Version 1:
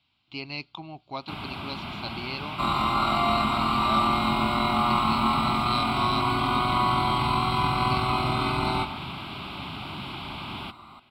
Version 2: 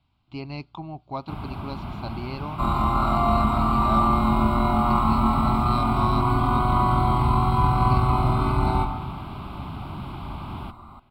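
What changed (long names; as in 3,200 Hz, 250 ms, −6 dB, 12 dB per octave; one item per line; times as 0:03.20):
speech +3.0 dB
second sound: send +7.0 dB
master: remove meter weighting curve D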